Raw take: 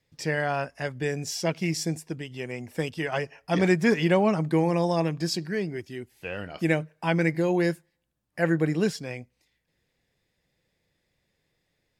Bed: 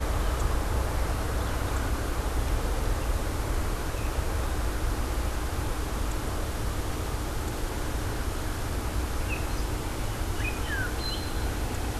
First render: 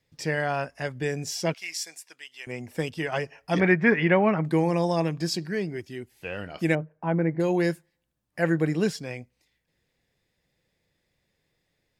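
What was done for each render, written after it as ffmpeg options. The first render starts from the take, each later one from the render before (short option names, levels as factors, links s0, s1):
-filter_complex "[0:a]asettb=1/sr,asplit=3[s0][s1][s2];[s0]atrim=end=1.544[s3];[s1]atrim=start=1.54:end=2.47,asetpts=PTS-STARTPTS,afade=t=in:d=0.004:c=qsin,afade=t=out:st=0.926:d=0.004:c=qsin,highpass=1400[s4];[s2]atrim=start=2.466[s5];[s3][s4]acrossfade=d=0.004:c1=hsin:c2=qsin[s6];[s6][s5]acrossfade=d=0.004:c1=qsin:c2=hsin,asettb=1/sr,asplit=3[s7][s8][s9];[s7]atrim=end=3.604[s10];[s8]atrim=start=3.6:end=4.45,asetpts=PTS-STARTPTS,afade=t=in:d=0.004:c=qsin,afade=t=out:st=0.846:d=0.004:c=qsin,lowpass=f=2000:t=q:w=2.1[s11];[s9]atrim=start=4.446[s12];[s10][s11]acrossfade=d=0.004:c1=hsin:c2=qsin[s13];[s13][s12]acrossfade=d=0.004:c1=qsin:c2=hsin,asettb=1/sr,asplit=3[s14][s15][s16];[s14]atrim=end=6.754[s17];[s15]atrim=start=6.75:end=7.4,asetpts=PTS-STARTPTS,afade=t=in:d=0.004:c=qsin,afade=t=out:st=0.646:d=0.004:c=qsin,lowpass=1100[s18];[s16]atrim=start=7.396[s19];[s17][s18]acrossfade=d=0.004:c1=hsin:c2=qsin[s20];[s20][s19]acrossfade=d=0.004:c1=qsin:c2=hsin"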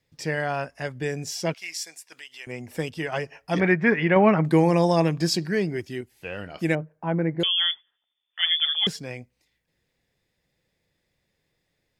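-filter_complex "[0:a]asettb=1/sr,asplit=3[s0][s1][s2];[s0]atrim=end=2.124[s3];[s1]atrim=start=2.12:end=3.38,asetpts=PTS-STARTPTS,afade=t=in:d=0.004:c=qsin,afade=t=out:st=1.256:d=0.004:c=qsin,acompressor=mode=upward:threshold=0.0141:ratio=2.5:attack=3.2:release=140:knee=2.83:detection=peak[s4];[s2]atrim=start=3.376[s5];[s3][s4]acrossfade=d=0.004:c1=hsin:c2=qsin[s6];[s6][s5]acrossfade=d=0.004:c1=qsin:c2=hsin,asettb=1/sr,asplit=3[s7][s8][s9];[s7]atrim=end=7.434[s10];[s8]atrim=start=7.43:end=8.87,asetpts=PTS-STARTPTS,afade=t=in:d=0.004:c=qsin,afade=t=out:st=1.436:d=0.004:c=qsin,lowpass=f=3100:t=q:w=0.5098,lowpass=f=3100:t=q:w=0.6013,lowpass=f=3100:t=q:w=0.9,lowpass=f=3100:t=q:w=2.563,afreqshift=-3600[s11];[s9]atrim=start=8.866[s12];[s10][s11]acrossfade=d=0.004:c1=hsin:c2=qsin[s13];[s13][s12]acrossfade=d=0.004:c1=qsin:c2=hsin,asplit=3[s14][s15][s16];[s14]atrim=end=4.162[s17];[s15]atrim=start=4.158:end=6.012,asetpts=PTS-STARTPTS,volume=1.68[s18];[s16]atrim=start=6.008[s19];[s17][s18]acrossfade=d=0.004:c1=hsin:c2=hsin[s20];[s20][s19]acrossfade=d=0.004:c1=hsin:c2=hsin"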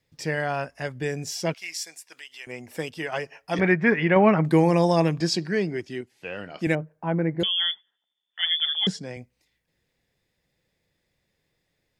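-filter_complex "[0:a]asettb=1/sr,asplit=3[s0][s1][s2];[s0]atrim=end=2.124[s3];[s1]atrim=start=2.12:end=3.59,asetpts=PTS-STARTPTS,afade=t=in:d=0.004:c=qsin,afade=t=out:st=1.466:d=0.004:c=qsin,lowshelf=f=190:g=-9.5[s4];[s2]atrim=start=3.586[s5];[s3][s4]acrossfade=d=0.004:c1=hsin:c2=qsin[s6];[s6][s5]acrossfade=d=0.004:c1=qsin:c2=hsin,asettb=1/sr,asplit=3[s7][s8][s9];[s7]atrim=end=5.204[s10];[s8]atrim=start=5.2:end=6.67,asetpts=PTS-STARTPTS,afade=t=in:d=0.004:c=qsin,afade=t=out:st=1.466:d=0.004:c=qsin,highpass=140,lowpass=7500[s11];[s9]atrim=start=6.666[s12];[s10][s11]acrossfade=d=0.004:c1=hsin:c2=qsin[s13];[s13][s12]acrossfade=d=0.004:c1=qsin:c2=hsin,asettb=1/sr,asplit=3[s14][s15][s16];[s14]atrim=end=7.424[s17];[s15]atrim=start=7.42:end=9.17,asetpts=PTS-STARTPTS,afade=t=in:d=0.004:c=qsin,afade=t=out:st=1.746:d=0.004:c=qsin,highpass=120,equalizer=f=190:t=q:w=4:g=7,equalizer=f=1200:t=q:w=4:g=-5,equalizer=f=2500:t=q:w=4:g=-8,lowpass=f=8800:w=0.5412,lowpass=f=8800:w=1.3066[s18];[s16]atrim=start=9.166[s19];[s17][s18]acrossfade=d=0.004:c1=hsin:c2=qsin[s20];[s20][s19]acrossfade=d=0.004:c1=qsin:c2=hsin"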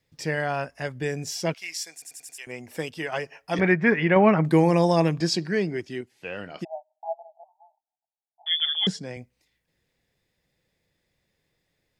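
-filter_complex "[0:a]asplit=3[s0][s1][s2];[s0]afade=t=out:st=6.63:d=0.02[s3];[s1]asuperpass=centerf=750:order=12:qfactor=2.7,afade=t=in:st=6.63:d=0.02,afade=t=out:st=8.46:d=0.02[s4];[s2]afade=t=in:st=8.46:d=0.02[s5];[s3][s4][s5]amix=inputs=3:normalize=0,asplit=6[s6][s7][s8][s9][s10][s11];[s6]atrim=end=2.022[s12];[s7]atrim=start=1.928:end=2.022[s13];[s8]atrim=start=1.928:end=2.022[s14];[s9]atrim=start=1.928:end=2.022[s15];[s10]atrim=start=1.928:end=2.022[s16];[s11]atrim=start=2.378[s17];[s12][s13]acrossfade=d=0.004:c1=hsin:c2=hsin[s18];[s18][s14]acrossfade=d=0.004:c1=hsin:c2=hsin[s19];[s19][s15]acrossfade=d=0.004:c1=hsin:c2=hsin[s20];[s20][s16]acrossfade=d=0.004:c1=hsin:c2=hsin[s21];[s21][s17]acrossfade=d=0.004:c1=hsin:c2=hsin"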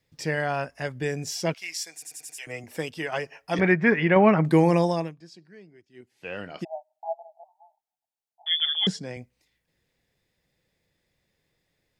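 -filter_complex "[0:a]asettb=1/sr,asplit=3[s0][s1][s2];[s0]atrim=end=1.944[s3];[s1]atrim=start=1.94:end=2.64,asetpts=PTS-STARTPTS,afade=t=in:d=0.004:c=qsin,afade=t=out:st=0.696:d=0.004:c=qsin,aecho=1:1:6.5:0.78,atrim=end_sample=30870[s4];[s2]atrim=start=2.636[s5];[s3][s4]acrossfade=d=0.004:c1=hsin:c2=qsin[s6];[s6][s5]acrossfade=d=0.004:c1=qsin:c2=hsin,asplit=3[s7][s8][s9];[s7]atrim=end=5.15,asetpts=PTS-STARTPTS,afade=t=out:st=4.74:d=0.41:silence=0.0630957[s10];[s8]atrim=start=5.15:end=5.93,asetpts=PTS-STARTPTS,volume=0.0631[s11];[s9]atrim=start=5.93,asetpts=PTS-STARTPTS,afade=t=in:d=0.41:silence=0.0630957[s12];[s10][s11][s12]concat=n=3:v=0:a=1"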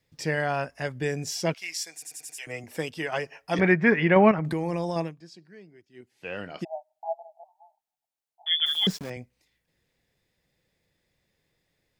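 -filter_complex "[0:a]asettb=1/sr,asplit=3[s0][s1][s2];[s0]atrim=end=4.314[s3];[s1]atrim=start=4.31:end=4.96,asetpts=PTS-STARTPTS,afade=t=in:d=0.004:c=qsin,afade=t=out:st=0.646:d=0.004:c=qsin,acompressor=threshold=0.0562:ratio=5:attack=3.2:release=140:knee=1:detection=peak[s4];[s2]atrim=start=4.956[s5];[s3][s4]acrossfade=d=0.004:c1=hsin:c2=qsin[s6];[s6][s5]acrossfade=d=0.004:c1=qsin:c2=hsin,asettb=1/sr,asplit=3[s7][s8][s9];[s7]atrim=end=8.664[s10];[s8]atrim=start=8.66:end=9.1,asetpts=PTS-STARTPTS,afade=t=in:d=0.004:c=qsin,afade=t=out:st=0.436:d=0.004:c=qsin,aeval=exprs='val(0)*gte(abs(val(0)),0.0126)':c=same[s11];[s9]atrim=start=9.096[s12];[s10][s11]acrossfade=d=0.004:c1=hsin:c2=qsin[s13];[s13][s12]acrossfade=d=0.004:c1=qsin:c2=hsin"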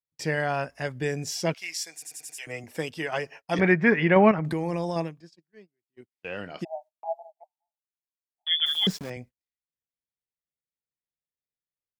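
-af "agate=range=0.0282:threshold=0.00501:ratio=16:detection=peak"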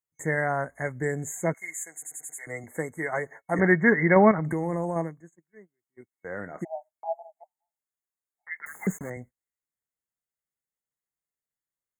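-af "afftfilt=real='re*(1-between(b*sr/4096,2200,6300))':imag='im*(1-between(b*sr/4096,2200,6300))':win_size=4096:overlap=0.75,equalizer=f=4400:w=0.49:g=3.5"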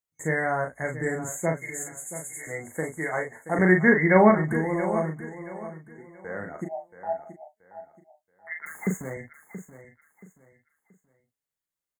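-filter_complex "[0:a]asplit=2[s0][s1];[s1]adelay=38,volume=0.562[s2];[s0][s2]amix=inputs=2:normalize=0,aecho=1:1:678|1356|2034:0.224|0.0672|0.0201"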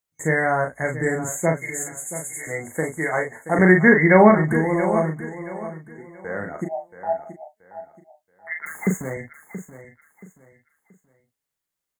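-af "volume=1.88,alimiter=limit=0.794:level=0:latency=1"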